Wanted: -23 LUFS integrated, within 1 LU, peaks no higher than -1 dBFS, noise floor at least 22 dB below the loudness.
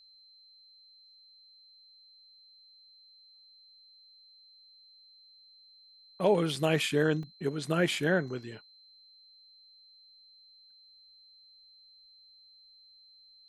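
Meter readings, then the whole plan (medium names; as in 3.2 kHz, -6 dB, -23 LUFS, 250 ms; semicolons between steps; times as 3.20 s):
dropouts 3; longest dropout 2.6 ms; steady tone 4.1 kHz; tone level -56 dBFS; loudness -29.0 LUFS; peak level -13.5 dBFS; loudness target -23.0 LUFS
-> interpolate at 6.56/7.23/8.28 s, 2.6 ms; band-stop 4.1 kHz, Q 30; trim +6 dB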